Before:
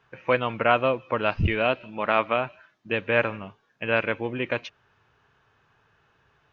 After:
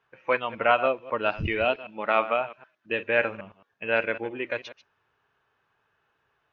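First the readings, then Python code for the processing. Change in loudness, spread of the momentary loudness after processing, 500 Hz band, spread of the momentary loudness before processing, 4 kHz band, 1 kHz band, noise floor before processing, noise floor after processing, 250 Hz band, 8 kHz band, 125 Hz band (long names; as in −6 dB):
−1.5 dB, 10 LU, −1.0 dB, 11 LU, −2.5 dB, −1.0 dB, −67 dBFS, −74 dBFS, −5.0 dB, can't be measured, −8.5 dB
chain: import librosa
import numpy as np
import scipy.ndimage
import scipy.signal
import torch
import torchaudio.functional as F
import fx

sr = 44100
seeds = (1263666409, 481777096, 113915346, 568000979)

y = fx.reverse_delay(x, sr, ms=110, wet_db=-11.5)
y = fx.noise_reduce_blind(y, sr, reduce_db=7)
y = fx.bass_treble(y, sr, bass_db=-8, treble_db=-4)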